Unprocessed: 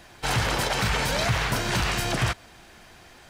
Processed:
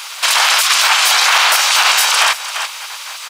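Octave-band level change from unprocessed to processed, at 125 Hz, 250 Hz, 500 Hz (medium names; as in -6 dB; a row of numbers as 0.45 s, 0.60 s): under -40 dB, under -20 dB, +1.5 dB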